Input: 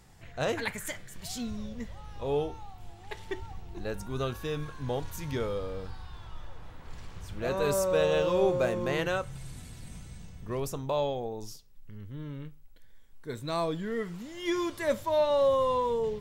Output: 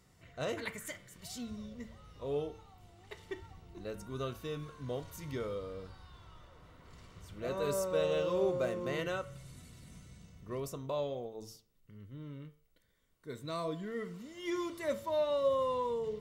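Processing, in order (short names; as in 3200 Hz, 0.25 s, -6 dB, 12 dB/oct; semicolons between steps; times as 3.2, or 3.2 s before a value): notch comb 830 Hz; de-hum 112.2 Hz, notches 31; gain -5.5 dB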